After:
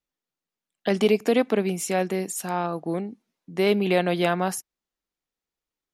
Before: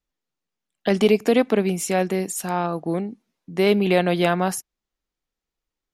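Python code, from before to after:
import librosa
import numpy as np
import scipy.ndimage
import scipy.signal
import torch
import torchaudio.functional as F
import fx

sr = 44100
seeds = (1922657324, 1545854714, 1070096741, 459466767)

y = fx.low_shelf(x, sr, hz=73.0, db=-10.5)
y = F.gain(torch.from_numpy(y), -2.5).numpy()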